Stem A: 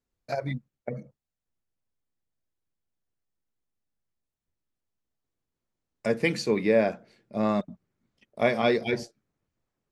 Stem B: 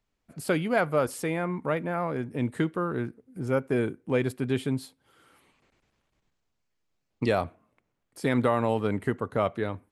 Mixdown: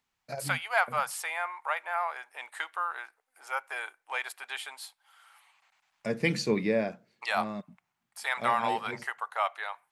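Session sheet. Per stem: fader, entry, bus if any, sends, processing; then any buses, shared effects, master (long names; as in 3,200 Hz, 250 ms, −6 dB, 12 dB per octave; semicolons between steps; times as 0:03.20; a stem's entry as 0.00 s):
0.0 dB, 0.00 s, no send, low-shelf EQ 490 Hz −10 dB; automatic ducking −11 dB, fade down 0.70 s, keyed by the second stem
+3.0 dB, 0.00 s, no send, elliptic high-pass filter 780 Hz, stop band 80 dB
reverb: not used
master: parametric band 150 Hz +11 dB 1.9 octaves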